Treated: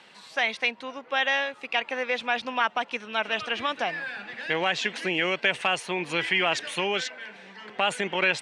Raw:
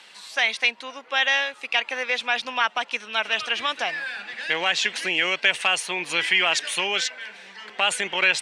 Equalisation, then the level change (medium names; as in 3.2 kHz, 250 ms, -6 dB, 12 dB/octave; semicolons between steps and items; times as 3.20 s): tilt EQ -3 dB/octave; -1.0 dB